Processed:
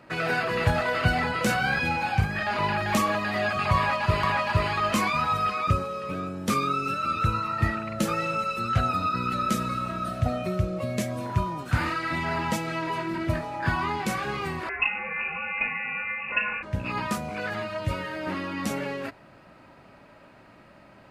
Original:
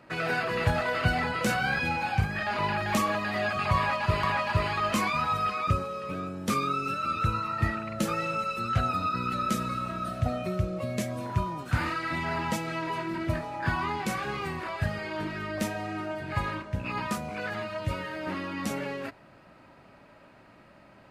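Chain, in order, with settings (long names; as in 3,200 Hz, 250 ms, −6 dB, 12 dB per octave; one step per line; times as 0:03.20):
0:14.69–0:16.63: voice inversion scrambler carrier 2,700 Hz
level +2.5 dB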